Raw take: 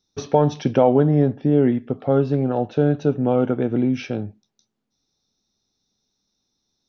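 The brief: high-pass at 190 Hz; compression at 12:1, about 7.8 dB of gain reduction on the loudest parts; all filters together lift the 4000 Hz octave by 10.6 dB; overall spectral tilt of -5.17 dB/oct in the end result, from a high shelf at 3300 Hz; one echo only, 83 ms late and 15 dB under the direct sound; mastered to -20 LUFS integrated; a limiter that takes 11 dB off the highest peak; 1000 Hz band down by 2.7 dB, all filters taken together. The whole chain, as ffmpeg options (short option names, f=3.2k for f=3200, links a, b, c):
-af "highpass=190,equalizer=f=1k:t=o:g=-5,highshelf=f=3.3k:g=9,equalizer=f=4k:t=o:g=7.5,acompressor=threshold=-20dB:ratio=12,alimiter=limit=-19dB:level=0:latency=1,aecho=1:1:83:0.178,volume=9dB"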